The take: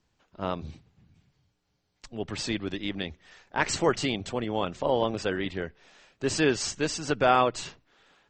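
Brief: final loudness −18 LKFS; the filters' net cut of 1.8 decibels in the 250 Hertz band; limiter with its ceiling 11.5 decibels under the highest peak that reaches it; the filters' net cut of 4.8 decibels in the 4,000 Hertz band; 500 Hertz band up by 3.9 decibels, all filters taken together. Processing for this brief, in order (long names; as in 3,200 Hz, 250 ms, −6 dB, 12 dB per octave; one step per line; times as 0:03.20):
parametric band 250 Hz −5 dB
parametric band 500 Hz +6 dB
parametric band 4,000 Hz −6.5 dB
level +14 dB
brickwall limiter −5 dBFS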